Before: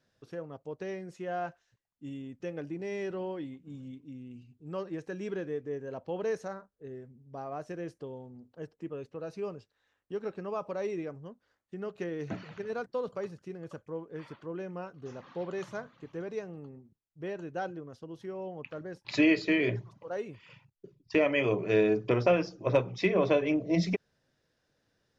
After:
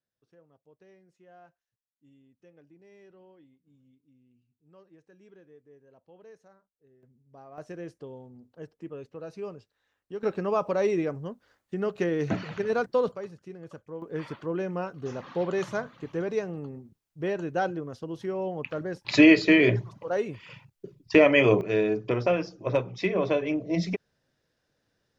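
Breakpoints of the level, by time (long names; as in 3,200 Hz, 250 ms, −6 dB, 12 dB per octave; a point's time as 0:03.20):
−19 dB
from 0:07.03 −9 dB
from 0:07.58 −0.5 dB
from 0:10.23 +9 dB
from 0:13.12 −1 dB
from 0:14.02 +8 dB
from 0:21.61 0 dB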